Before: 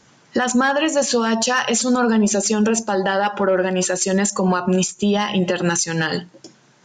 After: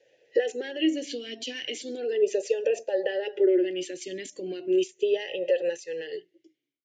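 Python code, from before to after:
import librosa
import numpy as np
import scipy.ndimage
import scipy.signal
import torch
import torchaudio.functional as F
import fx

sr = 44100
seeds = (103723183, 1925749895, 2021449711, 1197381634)

y = fx.fade_out_tail(x, sr, length_s=1.73)
y = fx.fixed_phaser(y, sr, hz=510.0, stages=4)
y = fx.vowel_sweep(y, sr, vowels='e-i', hz=0.36)
y = F.gain(torch.from_numpy(y), 5.0).numpy()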